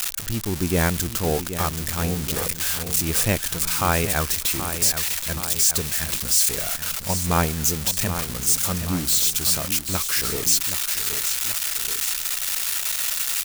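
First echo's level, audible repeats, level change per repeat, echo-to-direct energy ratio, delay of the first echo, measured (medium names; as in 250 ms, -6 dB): -10.0 dB, 2, -4.5 dB, -8.5 dB, 777 ms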